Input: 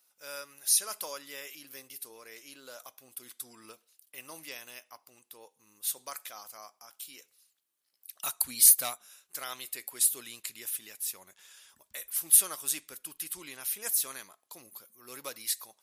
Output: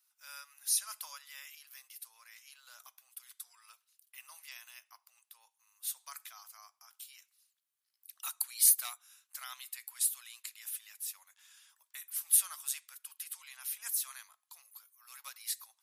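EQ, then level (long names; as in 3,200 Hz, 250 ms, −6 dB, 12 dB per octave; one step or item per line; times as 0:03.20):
inverse Chebyshev high-pass filter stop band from 360 Hz, stop band 50 dB
−5.5 dB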